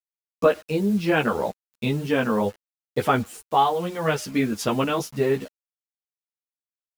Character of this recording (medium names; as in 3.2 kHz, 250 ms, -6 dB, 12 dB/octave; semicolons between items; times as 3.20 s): a quantiser's noise floor 8-bit, dither none; a shimmering, thickened sound